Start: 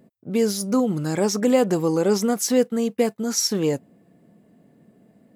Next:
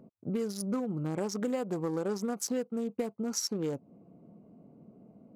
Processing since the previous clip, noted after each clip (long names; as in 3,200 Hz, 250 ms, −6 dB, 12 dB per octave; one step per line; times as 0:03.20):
adaptive Wiener filter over 25 samples
parametric band 1,300 Hz +5.5 dB 1 octave
downward compressor 5 to 1, threshold −31 dBFS, peak gain reduction 16.5 dB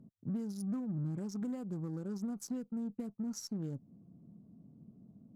drawn EQ curve 120 Hz 0 dB, 240 Hz −5 dB, 480 Hz −18 dB, 1,400 Hz −15 dB, 2,300 Hz −20 dB, 6,200 Hz −14 dB
soft clipping −30.5 dBFS, distortion −24 dB
harmonic generator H 8 −36 dB, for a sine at −32 dBFS
level +2.5 dB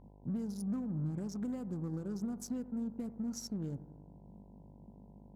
downward expander −55 dBFS
hum with harmonics 50 Hz, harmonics 20, −58 dBFS −5 dB per octave
bucket-brigade delay 87 ms, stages 1,024, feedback 65%, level −16 dB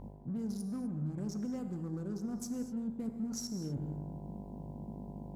reversed playback
downward compressor 5 to 1, threshold −48 dBFS, peak gain reduction 13.5 dB
reversed playback
reverb whose tail is shaped and stops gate 270 ms flat, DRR 7.5 dB
level +10.5 dB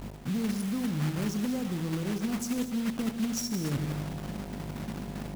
one scale factor per block 3 bits
level +7 dB